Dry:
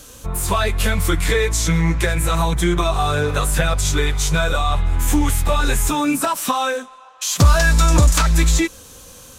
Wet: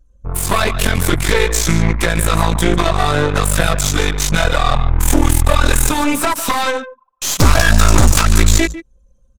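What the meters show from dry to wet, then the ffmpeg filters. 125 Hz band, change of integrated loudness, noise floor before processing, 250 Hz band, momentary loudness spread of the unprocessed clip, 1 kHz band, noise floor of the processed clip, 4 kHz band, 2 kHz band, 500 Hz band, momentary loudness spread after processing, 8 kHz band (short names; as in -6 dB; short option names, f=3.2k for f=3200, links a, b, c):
+2.5 dB, +3.0 dB, -42 dBFS, +3.0 dB, 6 LU, +3.5 dB, -53 dBFS, +4.0 dB, +4.0 dB, +3.5 dB, 7 LU, +4.0 dB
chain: -af "aecho=1:1:149:0.251,anlmdn=63.1,aeval=exprs='0.75*(cos(1*acos(clip(val(0)/0.75,-1,1)))-cos(1*PI/2))+0.075*(cos(5*acos(clip(val(0)/0.75,-1,1)))-cos(5*PI/2))+0.299*(cos(6*acos(clip(val(0)/0.75,-1,1)))-cos(6*PI/2))+0.0668*(cos(8*acos(clip(val(0)/0.75,-1,1)))-cos(8*PI/2))':c=same,volume=-1dB"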